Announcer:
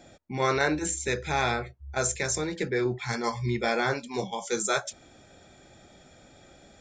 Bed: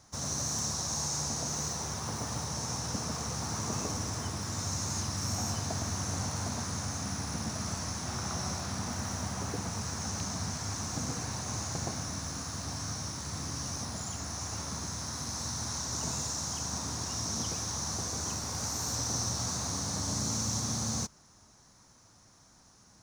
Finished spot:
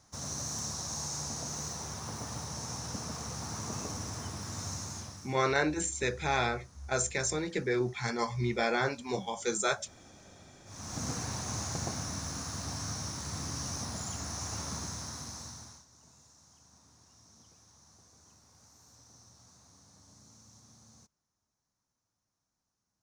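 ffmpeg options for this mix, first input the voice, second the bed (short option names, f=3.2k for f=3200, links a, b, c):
-filter_complex "[0:a]adelay=4950,volume=-3dB[a];[1:a]volume=19dB,afade=t=out:st=4.69:d=0.67:silence=0.105925,afade=t=in:st=10.65:d=0.43:silence=0.0707946,afade=t=out:st=14.73:d=1.12:silence=0.0530884[b];[a][b]amix=inputs=2:normalize=0"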